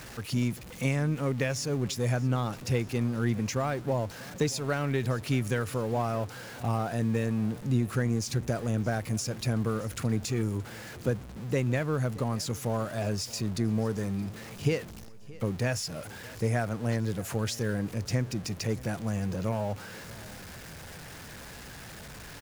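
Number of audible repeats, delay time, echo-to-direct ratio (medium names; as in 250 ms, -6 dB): 3, 623 ms, -19.5 dB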